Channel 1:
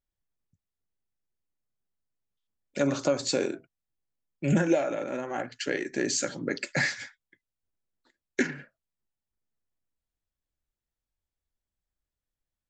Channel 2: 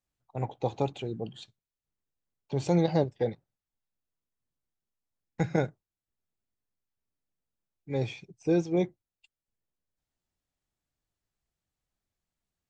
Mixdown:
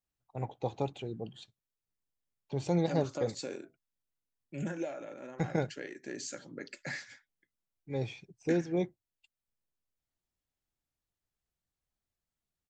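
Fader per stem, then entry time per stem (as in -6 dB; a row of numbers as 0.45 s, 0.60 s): -13.0 dB, -4.5 dB; 0.10 s, 0.00 s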